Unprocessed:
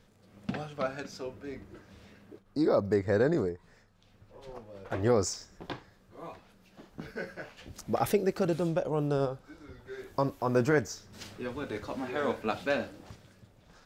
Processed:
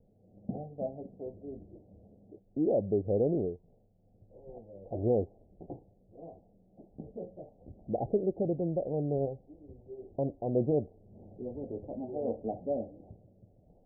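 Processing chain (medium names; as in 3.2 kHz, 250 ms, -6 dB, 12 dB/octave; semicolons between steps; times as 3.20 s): steep low-pass 760 Hz 72 dB/octave; trim -2 dB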